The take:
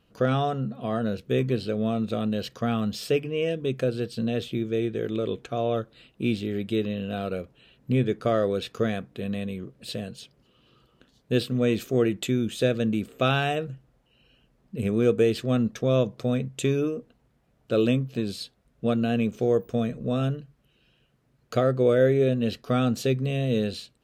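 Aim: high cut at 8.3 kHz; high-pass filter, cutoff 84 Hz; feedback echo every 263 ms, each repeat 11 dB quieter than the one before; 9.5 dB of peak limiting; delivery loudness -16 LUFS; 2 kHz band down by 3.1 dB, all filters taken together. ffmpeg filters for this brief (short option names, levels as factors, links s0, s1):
-af "highpass=84,lowpass=8300,equalizer=f=2000:t=o:g=-4.5,alimiter=limit=0.112:level=0:latency=1,aecho=1:1:263|526|789:0.282|0.0789|0.0221,volume=4.73"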